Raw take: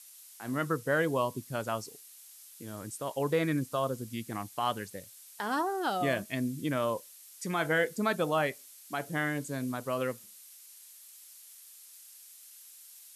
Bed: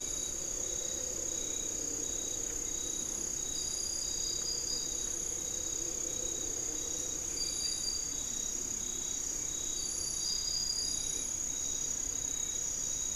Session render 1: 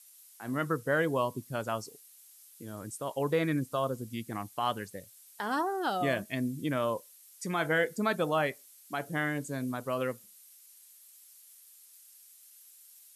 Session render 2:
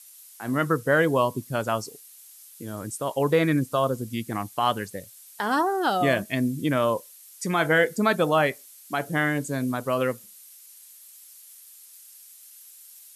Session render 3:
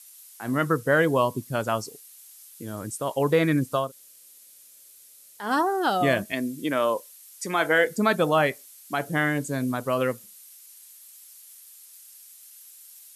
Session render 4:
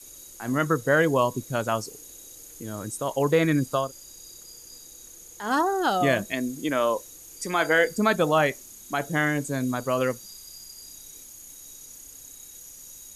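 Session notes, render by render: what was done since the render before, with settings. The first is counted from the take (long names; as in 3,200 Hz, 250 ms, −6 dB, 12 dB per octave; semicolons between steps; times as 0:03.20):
broadband denoise 6 dB, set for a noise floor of −53 dBFS
level +7.5 dB
0:03.84–0:05.44: fill with room tone, crossfade 0.16 s; 0:06.32–0:07.87: high-pass filter 280 Hz
mix in bed −11.5 dB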